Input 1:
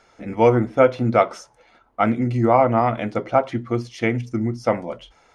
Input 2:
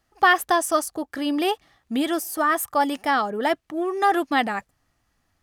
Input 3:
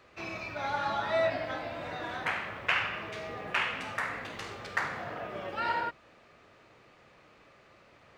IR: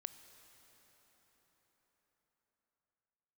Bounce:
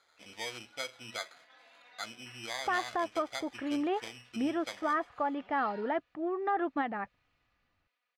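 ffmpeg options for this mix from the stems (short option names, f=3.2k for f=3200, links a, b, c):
-filter_complex "[0:a]equalizer=f=76:w=1.3:g=14,acrusher=samples=16:mix=1:aa=0.000001,volume=2.5dB[a];[1:a]alimiter=limit=-13dB:level=0:latency=1:release=161,lowpass=2k,adelay=2450,volume=-8dB[b];[2:a]aecho=1:1:4.1:0.94,dynaudnorm=f=160:g=9:m=9dB,volume=-16dB[c];[a][c]amix=inputs=2:normalize=0,aderivative,acompressor=threshold=-42dB:ratio=1.5,volume=0dB[d];[b][d]amix=inputs=2:normalize=0,lowpass=3.6k"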